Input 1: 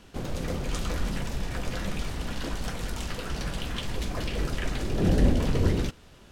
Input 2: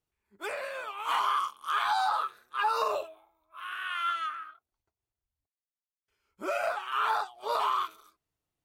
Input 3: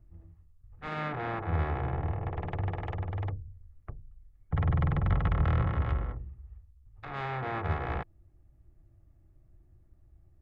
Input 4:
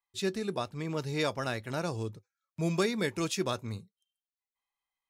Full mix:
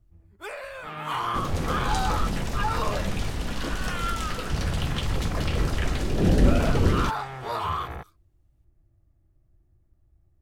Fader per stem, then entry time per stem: +2.5 dB, −1.0 dB, −3.5 dB, muted; 1.20 s, 0.00 s, 0.00 s, muted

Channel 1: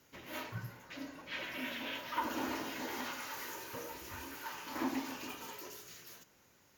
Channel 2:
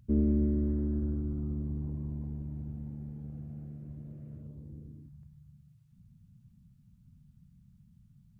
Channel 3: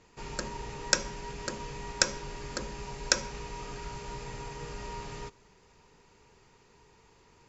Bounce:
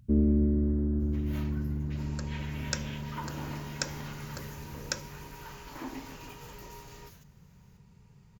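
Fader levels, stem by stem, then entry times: −4.5, +2.5, −8.5 decibels; 1.00, 0.00, 1.80 seconds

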